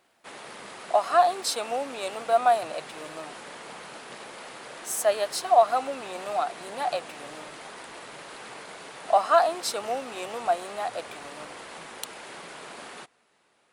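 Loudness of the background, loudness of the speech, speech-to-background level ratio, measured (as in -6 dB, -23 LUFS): -41.5 LUFS, -26.0 LUFS, 15.5 dB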